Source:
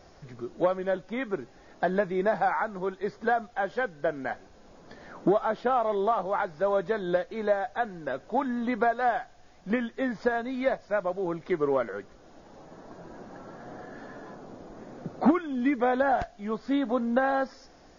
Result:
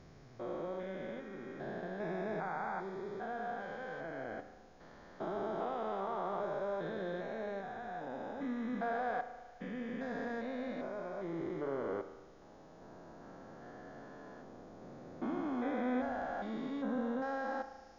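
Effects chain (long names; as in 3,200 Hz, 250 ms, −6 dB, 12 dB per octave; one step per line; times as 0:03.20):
spectrum averaged block by block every 400 ms
spring reverb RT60 1.3 s, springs 36 ms, chirp 50 ms, DRR 9.5 dB
level −6.5 dB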